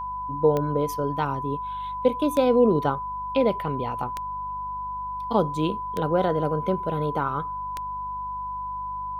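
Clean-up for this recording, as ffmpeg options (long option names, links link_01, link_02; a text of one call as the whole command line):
ffmpeg -i in.wav -af "adeclick=threshold=4,bandreject=frequency=49.7:width_type=h:width=4,bandreject=frequency=99.4:width_type=h:width=4,bandreject=frequency=149.1:width_type=h:width=4,bandreject=frequency=198.8:width_type=h:width=4,bandreject=frequency=1000:width=30" out.wav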